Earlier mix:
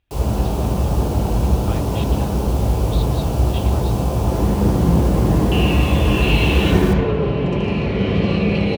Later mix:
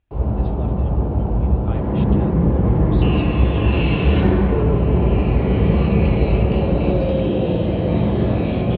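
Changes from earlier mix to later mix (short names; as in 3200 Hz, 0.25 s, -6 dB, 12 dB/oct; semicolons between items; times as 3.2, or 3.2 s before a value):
first sound: add tape spacing loss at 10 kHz 36 dB; second sound: entry -2.50 s; master: add air absorption 410 m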